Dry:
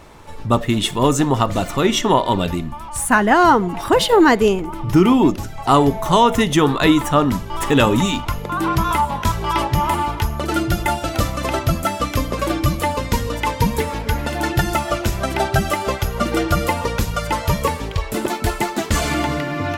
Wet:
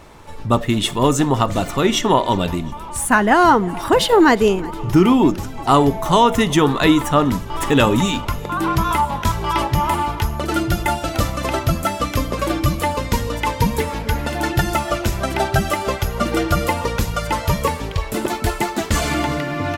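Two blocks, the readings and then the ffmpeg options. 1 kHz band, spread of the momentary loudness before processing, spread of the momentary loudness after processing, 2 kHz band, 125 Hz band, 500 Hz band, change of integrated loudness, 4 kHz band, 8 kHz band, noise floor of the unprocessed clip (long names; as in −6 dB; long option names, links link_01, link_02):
0.0 dB, 9 LU, 9 LU, 0.0 dB, 0.0 dB, 0.0 dB, 0.0 dB, 0.0 dB, 0.0 dB, −30 dBFS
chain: -af "aecho=1:1:361|722|1083|1444:0.0668|0.0361|0.0195|0.0105"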